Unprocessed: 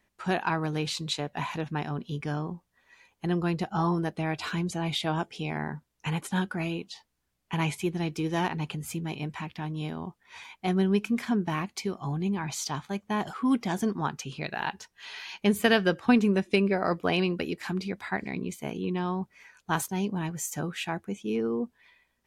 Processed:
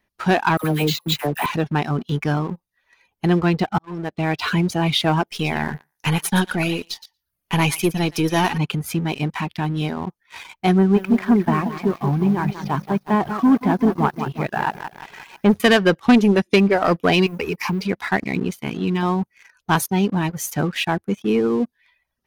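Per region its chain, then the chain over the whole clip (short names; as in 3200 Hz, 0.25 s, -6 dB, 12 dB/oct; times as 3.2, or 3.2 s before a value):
0.57–1.46 LPF 4700 Hz 24 dB/oct + careless resampling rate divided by 4×, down none, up hold + dispersion lows, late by 69 ms, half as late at 810 Hz
3.36–4.48 LPF 5500 Hz + auto swell 0.653 s
5.27–8.58 half-wave gain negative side -3 dB + high shelf 5800 Hz +12 dB + thinning echo 0.116 s, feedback 16%, high-pass 880 Hz, level -7.5 dB
10.78–15.6 LPF 1600 Hz + lo-fi delay 0.177 s, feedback 55%, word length 9-bit, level -8 dB
17.26–17.82 ripple EQ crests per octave 0.8, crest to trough 15 dB + compressor 8:1, threshold -30 dBFS + modulation noise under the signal 34 dB
18.53–19.03 bell 600 Hz -14 dB 0.76 oct + notches 50/100/150/200/250/300/350/400 Hz
whole clip: reverb removal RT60 0.55 s; bell 7600 Hz -13 dB 0.3 oct; sample leveller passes 2; gain +4 dB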